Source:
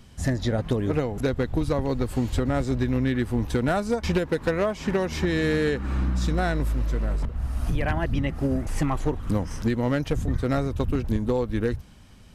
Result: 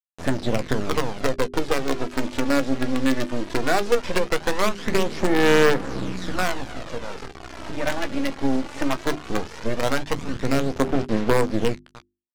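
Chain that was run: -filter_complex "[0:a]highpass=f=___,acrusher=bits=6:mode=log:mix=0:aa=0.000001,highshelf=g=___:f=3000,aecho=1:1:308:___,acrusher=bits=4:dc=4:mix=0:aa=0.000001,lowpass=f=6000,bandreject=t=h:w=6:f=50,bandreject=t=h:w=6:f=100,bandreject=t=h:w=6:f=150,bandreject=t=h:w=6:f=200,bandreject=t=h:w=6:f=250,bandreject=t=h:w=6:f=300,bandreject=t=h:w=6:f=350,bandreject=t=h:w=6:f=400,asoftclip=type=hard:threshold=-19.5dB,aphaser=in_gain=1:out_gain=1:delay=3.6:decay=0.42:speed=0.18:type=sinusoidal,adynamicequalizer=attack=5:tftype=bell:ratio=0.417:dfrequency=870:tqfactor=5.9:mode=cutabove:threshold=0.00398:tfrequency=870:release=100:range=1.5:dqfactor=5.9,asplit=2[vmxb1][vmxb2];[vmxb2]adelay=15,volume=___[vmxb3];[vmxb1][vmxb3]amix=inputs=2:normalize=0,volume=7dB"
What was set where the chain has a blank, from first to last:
240, -10, 0.075, -12.5dB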